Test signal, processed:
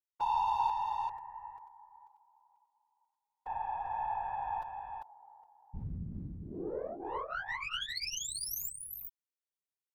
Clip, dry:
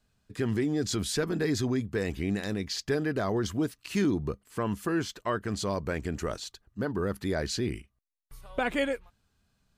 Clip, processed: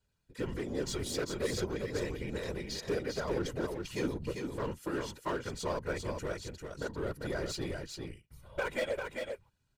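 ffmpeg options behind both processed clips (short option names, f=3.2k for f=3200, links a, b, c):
-af "aecho=1:1:2.1:0.84,aeval=exprs='0.2*(cos(1*acos(clip(val(0)/0.2,-1,1)))-cos(1*PI/2))+0.00355*(cos(2*acos(clip(val(0)/0.2,-1,1)))-cos(2*PI/2))+0.0398*(cos(3*acos(clip(val(0)/0.2,-1,1)))-cos(3*PI/2))+0.002*(cos(4*acos(clip(val(0)/0.2,-1,1)))-cos(4*PI/2))+0.00224*(cos(8*acos(clip(val(0)/0.2,-1,1)))-cos(8*PI/2))':c=same,asoftclip=type=hard:threshold=-25.5dB,afftfilt=real='hypot(re,im)*cos(2*PI*random(0))':imag='hypot(re,im)*sin(2*PI*random(1))':win_size=512:overlap=0.75,aecho=1:1:396:0.562,volume=4dB"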